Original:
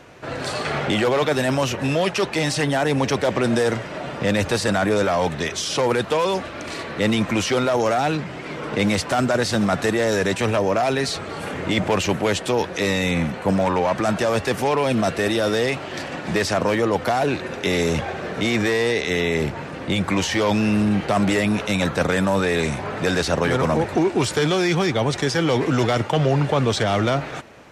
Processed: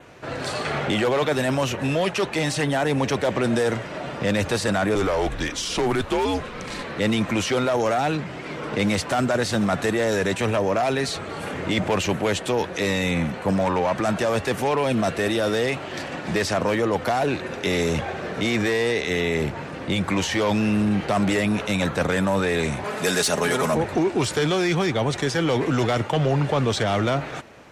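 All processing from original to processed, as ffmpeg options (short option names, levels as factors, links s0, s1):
-filter_complex "[0:a]asettb=1/sr,asplit=3[s0][s1][s2];[s0]atrim=end=4.954[s3];[s1]atrim=start=4.95:end=6.84,asetpts=PTS-STARTPTS,afade=t=in:d=0.004:c=qsin,afade=t=out:st=1.886:d=0.004:c=qsin,afreqshift=-110,asoftclip=type=hard:threshold=0.178[s4];[s2]atrim=start=6.836[s5];[s3][s4]acrossfade=d=0.004:c1=hsin:c2=qsin[s6];[s6][s5]acrossfade=d=0.004:c1=qsin:c2=hsin,asettb=1/sr,asplit=3[s7][s8][s9];[s7]atrim=end=22.844[s10];[s8]atrim=start=22.84:end=23.75,asetpts=PTS-STARTPTS,afade=t=in:d=0.004:c=qsin,afade=t=out:st=0.906:d=0.004:c=qsin,highpass=f=210:p=1,equalizer=f=11000:t=o:w=1.5:g=14,aecho=1:1:4.8:0.46,atrim=end_sample=40131[s11];[s9]atrim=start=23.746[s12];[s10][s11]acrossfade=d=0.004:c1=hsin:c2=qsin[s13];[s13][s12]acrossfade=d=0.004:c1=qsin:c2=hsin,adynamicequalizer=threshold=0.00562:dfrequency=5100:dqfactor=3.3:tfrequency=5100:tqfactor=3.3:attack=5:release=100:ratio=0.375:range=2:mode=cutabove:tftype=bell,acontrast=88,volume=0.376"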